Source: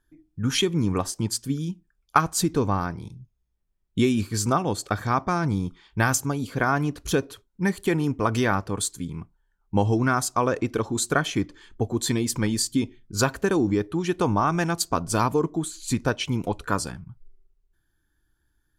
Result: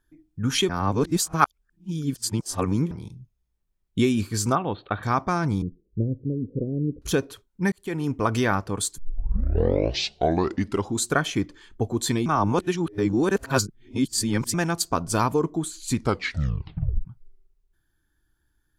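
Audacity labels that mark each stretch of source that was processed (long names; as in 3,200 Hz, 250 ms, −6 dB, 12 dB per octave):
0.690000	2.910000	reverse
4.550000	5.030000	Chebyshev low-pass with heavy ripple 4,000 Hz, ripple 3 dB
5.620000	7.020000	Butterworth low-pass 520 Hz 72 dB per octave
7.720000	8.140000	fade in
8.980000	8.980000	tape start 2.01 s
12.260000	14.540000	reverse
15.960000	15.960000	tape stop 1.09 s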